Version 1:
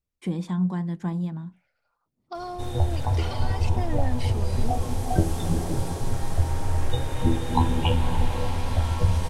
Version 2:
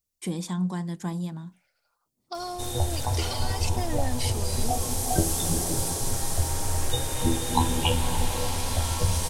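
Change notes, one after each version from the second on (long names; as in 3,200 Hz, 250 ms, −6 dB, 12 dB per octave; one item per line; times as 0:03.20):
master: add bass and treble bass −4 dB, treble +15 dB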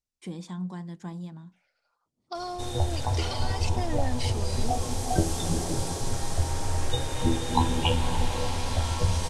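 first voice −6.5 dB
master: add high-frequency loss of the air 67 metres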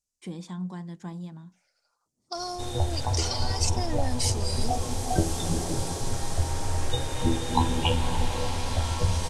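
second voice: add high shelf with overshoot 4,500 Hz +11 dB, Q 1.5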